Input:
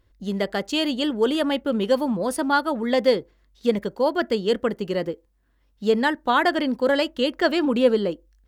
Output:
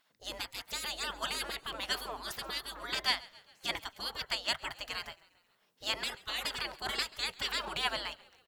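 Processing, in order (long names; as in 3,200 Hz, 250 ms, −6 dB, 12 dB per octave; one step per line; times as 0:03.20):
gate on every frequency bin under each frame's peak −25 dB weak
echo with shifted repeats 135 ms, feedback 56%, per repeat −58 Hz, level −22 dB
level +3.5 dB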